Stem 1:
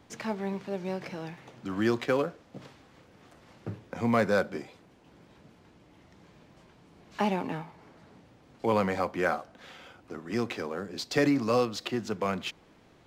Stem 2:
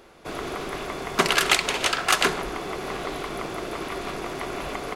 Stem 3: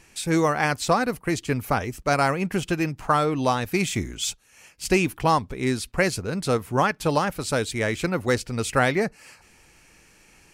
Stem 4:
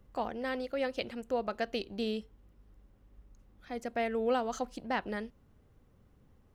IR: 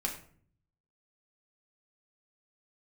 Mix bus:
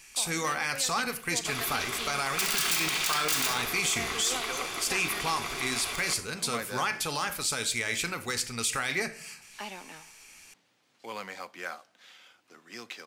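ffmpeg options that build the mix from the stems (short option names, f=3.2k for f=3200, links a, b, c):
-filter_complex "[0:a]highpass=150,adelay=2400,volume=-9dB[a];[1:a]aeval=exprs='(mod(5.01*val(0)+1,2)-1)/5.01':c=same,adelay=1200,volume=-7.5dB,asplit=2[b][c];[c]volume=-4.5dB[d];[2:a]alimiter=limit=-14dB:level=0:latency=1:release=30,volume=-6.5dB,asplit=2[e][f];[f]volume=-6dB[g];[3:a]volume=-3.5dB[h];[4:a]atrim=start_sample=2205[i];[d][g]amix=inputs=2:normalize=0[j];[j][i]afir=irnorm=-1:irlink=0[k];[a][b][e][h][k]amix=inputs=5:normalize=0,tiltshelf=f=1.2k:g=-10,asoftclip=type=tanh:threshold=-9.5dB,alimiter=limit=-18.5dB:level=0:latency=1:release=27"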